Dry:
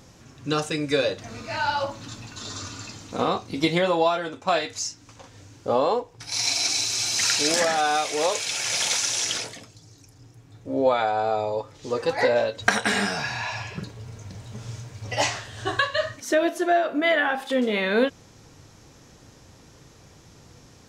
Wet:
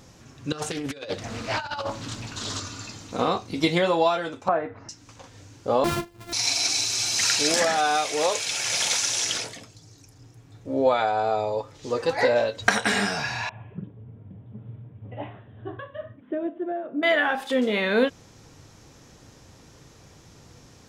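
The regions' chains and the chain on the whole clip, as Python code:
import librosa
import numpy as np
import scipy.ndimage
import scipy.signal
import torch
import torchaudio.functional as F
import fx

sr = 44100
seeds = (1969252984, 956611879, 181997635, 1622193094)

y = fx.chain(x, sr, fx.over_compress(threshold_db=-29.0, ratio=-0.5),
    fx.doppler_dist(depth_ms=0.43), at=(0.52, 2.6))
y = fx.chain(y, sr, fx.lowpass(hz=1500.0, slope=24),
    fx.band_squash(depth_pct=100), at=(4.48, 4.89))
y = fx.chain(y, sr, fx.sample_sort(block=128),
    fx.low_shelf(hz=210.0, db=7.5),
    fx.ensemble(), at=(5.84, 6.33))
y = fx.chain(y, sr, fx.bandpass_q(hz=200.0, q=1.1),
    fx.resample_bad(factor=6, down='none', up='filtered'), at=(13.49, 17.03))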